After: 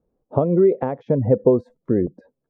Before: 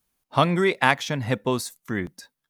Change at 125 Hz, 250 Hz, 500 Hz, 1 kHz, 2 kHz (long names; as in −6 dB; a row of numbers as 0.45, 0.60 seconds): +4.0 dB, +6.0 dB, +8.5 dB, −7.5 dB, below −20 dB